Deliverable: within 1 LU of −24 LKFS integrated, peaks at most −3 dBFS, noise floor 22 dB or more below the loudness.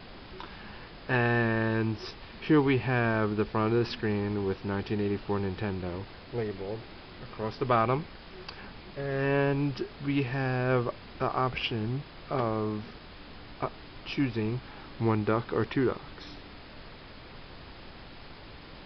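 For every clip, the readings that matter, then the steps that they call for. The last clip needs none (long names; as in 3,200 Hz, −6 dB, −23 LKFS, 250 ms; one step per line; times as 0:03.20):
background noise floor −48 dBFS; target noise floor −52 dBFS; integrated loudness −30.0 LKFS; sample peak −11.5 dBFS; target loudness −24.0 LKFS
→ noise reduction from a noise print 6 dB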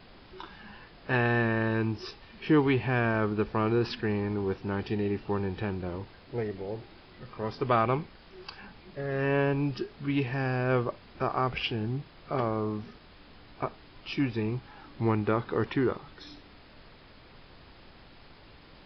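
background noise floor −54 dBFS; integrated loudness −30.0 LKFS; sample peak −11.5 dBFS; target loudness −24.0 LKFS
→ level +6 dB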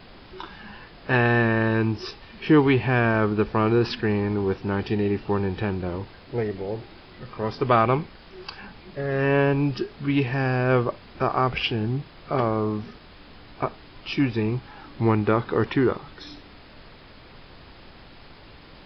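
integrated loudness −24.0 LKFS; sample peak −5.5 dBFS; background noise floor −48 dBFS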